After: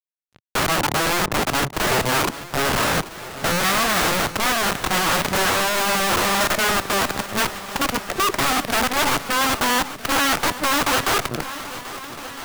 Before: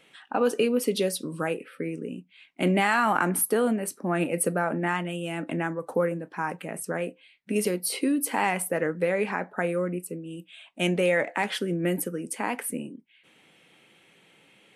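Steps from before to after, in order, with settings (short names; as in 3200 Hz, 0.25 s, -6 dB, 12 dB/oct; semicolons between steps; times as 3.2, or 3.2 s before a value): speed glide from 60% -> 177%; elliptic low-pass 710 Hz, stop band 70 dB; low shelf 83 Hz +5.5 dB; in parallel at +1.5 dB: compressor 4:1, threshold -34 dBFS, peak gain reduction 13.5 dB; on the sum: auto swell 0.539 s; fuzz box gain 48 dB, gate -47 dBFS; bell 120 Hz +12.5 dB 2.2 oct; wrapped overs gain 10.5 dB; on a send: swung echo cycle 1.31 s, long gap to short 1.5:1, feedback 57%, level -15 dB; on the sum: gain -4.5 dB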